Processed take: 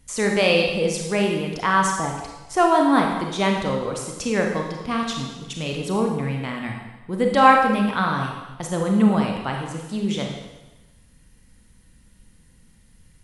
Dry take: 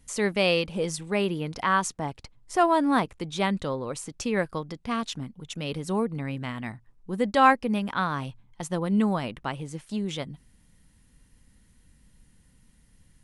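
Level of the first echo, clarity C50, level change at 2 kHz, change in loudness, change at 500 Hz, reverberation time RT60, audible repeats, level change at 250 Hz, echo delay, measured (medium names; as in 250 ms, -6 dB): no echo, 3.0 dB, +5.5 dB, +5.5 dB, +6.0 dB, 1.1 s, no echo, +5.5 dB, no echo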